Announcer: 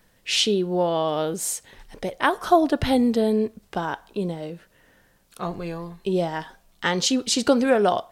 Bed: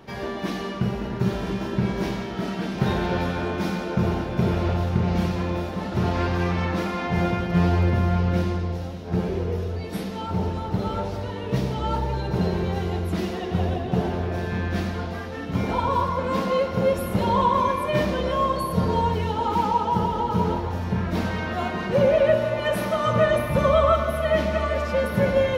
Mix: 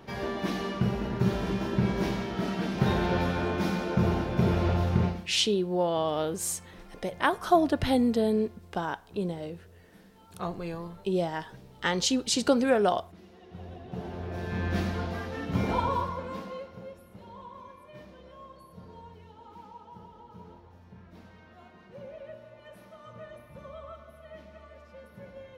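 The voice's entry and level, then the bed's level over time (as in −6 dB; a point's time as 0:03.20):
5.00 s, −4.5 dB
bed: 0:05.05 −2.5 dB
0:05.28 −26 dB
0:13.22 −26 dB
0:14.70 −3 dB
0:15.78 −3 dB
0:17.04 −26 dB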